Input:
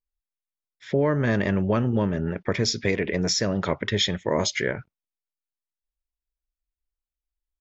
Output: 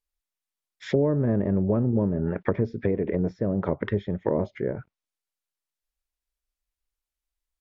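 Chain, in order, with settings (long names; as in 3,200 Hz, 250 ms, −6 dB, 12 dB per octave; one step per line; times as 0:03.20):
low-shelf EQ 460 Hz −5 dB
treble cut that deepens with the level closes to 490 Hz, closed at −23.5 dBFS
level +4.5 dB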